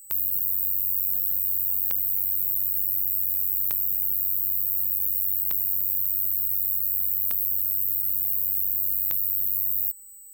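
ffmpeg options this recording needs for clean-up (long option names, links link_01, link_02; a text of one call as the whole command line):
ffmpeg -i in.wav -af "adeclick=threshold=4,bandreject=frequency=8000:width=30" out.wav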